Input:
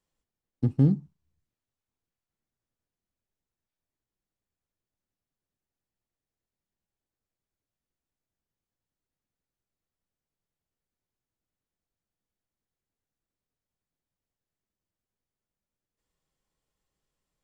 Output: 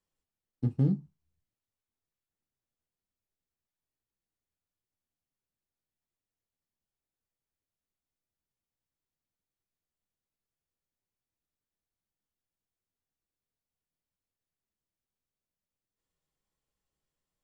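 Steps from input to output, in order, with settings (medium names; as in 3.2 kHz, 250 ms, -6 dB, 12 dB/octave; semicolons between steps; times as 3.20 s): flange 0.63 Hz, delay 9.7 ms, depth 7 ms, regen -40%; trim -1 dB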